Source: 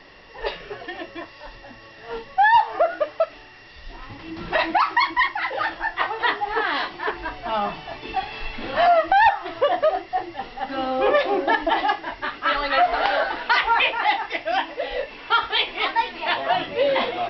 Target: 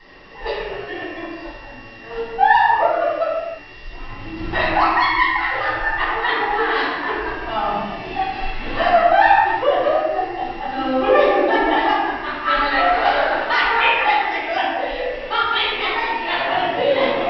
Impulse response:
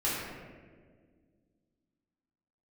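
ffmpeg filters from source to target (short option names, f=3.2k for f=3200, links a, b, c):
-filter_complex "[0:a]asettb=1/sr,asplit=3[a][b][c];[a]atrim=end=4.284[d];[b]atrim=start=4.28:end=6.01,asetpts=PTS-STARTPTS,afade=t=in:d=0.004:c=qsin,afade=t=out:st=1.726:d=0.004:c=qsin,lowshelf=f=120:t=q:w=1.5:g=7[e];[c]atrim=start=6.006[f];[d][e]acrossfade=d=0.004:c1=hsin:c2=qsin[g];[g][f]acrossfade=d=0.004:c1=qsin:c2=hsin[h];[1:a]atrim=start_sample=2205,afade=t=out:st=0.4:d=0.01,atrim=end_sample=18081[i];[h][i]afir=irnorm=-1:irlink=0,volume=-4.5dB"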